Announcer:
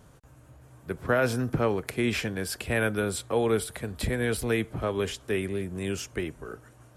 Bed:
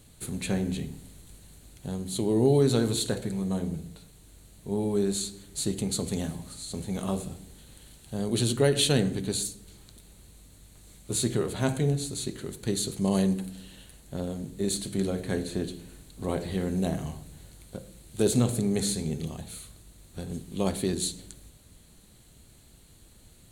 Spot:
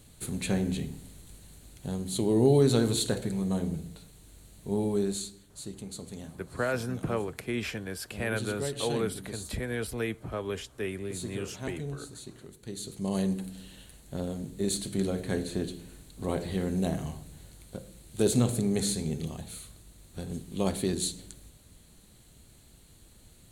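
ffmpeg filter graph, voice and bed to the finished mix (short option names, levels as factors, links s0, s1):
-filter_complex "[0:a]adelay=5500,volume=0.531[s0];[1:a]volume=3.35,afade=t=out:st=4.78:d=0.76:silence=0.266073,afade=t=in:st=12.7:d=0.92:silence=0.298538[s1];[s0][s1]amix=inputs=2:normalize=0"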